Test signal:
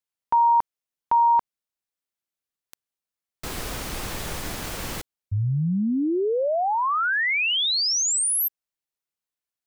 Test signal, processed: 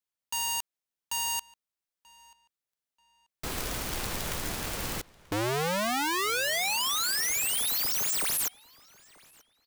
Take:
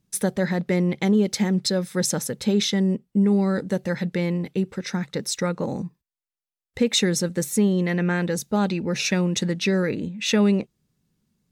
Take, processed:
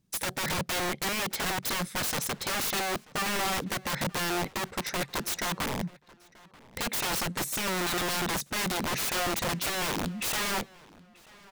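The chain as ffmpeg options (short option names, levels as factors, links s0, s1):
-filter_complex "[0:a]aeval=exprs='(mod(14.1*val(0)+1,2)-1)/14.1':c=same,asplit=2[s0][s1];[s1]adelay=935,lowpass=f=4300:p=1,volume=0.075,asplit=2[s2][s3];[s3]adelay=935,lowpass=f=4300:p=1,volume=0.32[s4];[s0][s2][s4]amix=inputs=3:normalize=0,volume=0.794"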